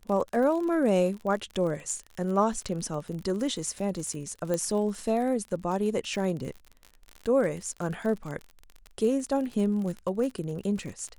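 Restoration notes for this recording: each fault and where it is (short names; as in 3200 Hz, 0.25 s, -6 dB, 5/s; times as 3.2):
crackle 46/s -34 dBFS
4.54 pop -16 dBFS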